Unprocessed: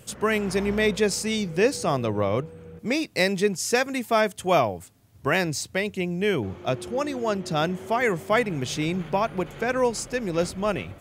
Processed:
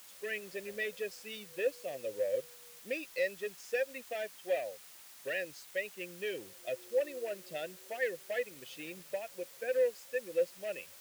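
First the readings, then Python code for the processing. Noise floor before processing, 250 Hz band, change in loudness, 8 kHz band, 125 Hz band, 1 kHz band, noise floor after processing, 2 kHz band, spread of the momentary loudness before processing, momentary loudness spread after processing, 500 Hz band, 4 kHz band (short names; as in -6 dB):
-52 dBFS, -24.0 dB, -12.5 dB, -16.5 dB, -30.5 dB, -22.5 dB, -54 dBFS, -11.5 dB, 6 LU, 10 LU, -10.0 dB, -15.5 dB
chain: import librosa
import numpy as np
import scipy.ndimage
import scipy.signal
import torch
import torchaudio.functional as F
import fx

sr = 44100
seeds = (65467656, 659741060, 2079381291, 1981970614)

p1 = fx.bin_expand(x, sr, power=1.5)
p2 = fx.recorder_agc(p1, sr, target_db=-13.5, rise_db_per_s=6.2, max_gain_db=30)
p3 = np.clip(p2, -10.0 ** (-19.5 / 20.0), 10.0 ** (-19.5 / 20.0))
p4 = fx.vowel_filter(p3, sr, vowel='e')
p5 = fx.peak_eq(p4, sr, hz=1200.0, db=-3.5, octaves=1.5)
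p6 = fx.quant_dither(p5, sr, seeds[0], bits=8, dither='triangular')
p7 = p5 + (p6 * 10.0 ** (-6.0 / 20.0))
y = fx.low_shelf(p7, sr, hz=460.0, db=-9.0)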